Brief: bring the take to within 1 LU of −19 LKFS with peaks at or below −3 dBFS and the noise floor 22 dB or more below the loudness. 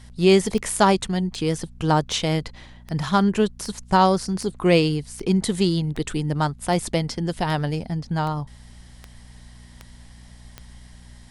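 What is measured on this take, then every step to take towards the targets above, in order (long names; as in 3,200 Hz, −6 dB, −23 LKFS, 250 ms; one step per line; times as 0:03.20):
number of clicks 14; mains hum 60 Hz; hum harmonics up to 240 Hz; level of the hum −44 dBFS; integrated loudness −22.5 LKFS; sample peak −4.0 dBFS; target loudness −19.0 LKFS
→ click removal
hum removal 60 Hz, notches 4
level +3.5 dB
brickwall limiter −3 dBFS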